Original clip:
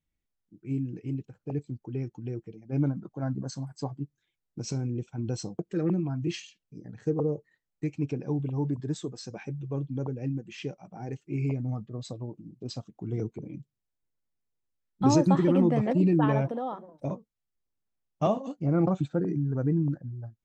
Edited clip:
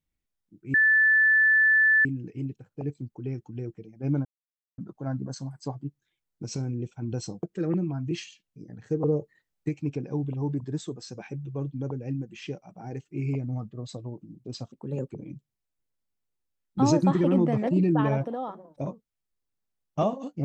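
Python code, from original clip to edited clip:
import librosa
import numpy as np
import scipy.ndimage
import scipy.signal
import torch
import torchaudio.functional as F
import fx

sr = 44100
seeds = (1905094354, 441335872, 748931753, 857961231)

y = fx.edit(x, sr, fx.insert_tone(at_s=0.74, length_s=1.31, hz=1750.0, db=-16.5),
    fx.insert_silence(at_s=2.94, length_s=0.53),
    fx.clip_gain(start_s=7.2, length_s=0.65, db=3.5),
    fx.speed_span(start_s=12.88, length_s=0.47, speed=1.2), tone=tone)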